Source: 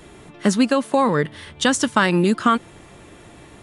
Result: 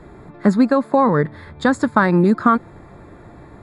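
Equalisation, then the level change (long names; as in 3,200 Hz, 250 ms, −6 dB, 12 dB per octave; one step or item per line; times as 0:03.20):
moving average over 15 samples
parametric band 390 Hz −3 dB 2.1 octaves
+5.5 dB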